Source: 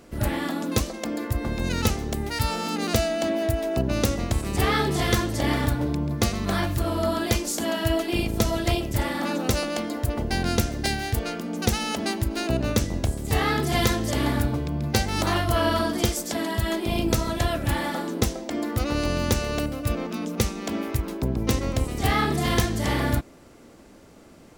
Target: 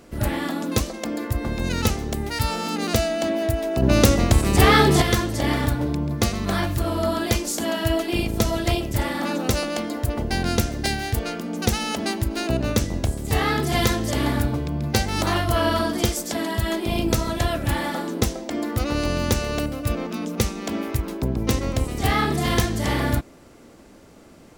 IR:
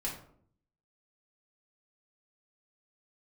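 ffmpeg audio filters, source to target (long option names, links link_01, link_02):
-filter_complex "[0:a]asettb=1/sr,asplit=3[link_01][link_02][link_03];[link_01]atrim=end=3.824[link_04];[link_02]atrim=start=3.82:end=5.02,asetpts=PTS-STARTPTS,afade=type=in:duration=0.004:curve=qsin,afade=type=out:start_time=1.196:duration=0.004:curve=qsin,acontrast=74[link_05];[link_03]atrim=start=5.016[link_06];[link_04][link_05]acrossfade=duration=0.004:curve1=hsin:curve2=qsin[link_07];[link_07][link_06]acrossfade=duration=0.004:curve1=qsin:curve2=hsin,volume=1.5dB"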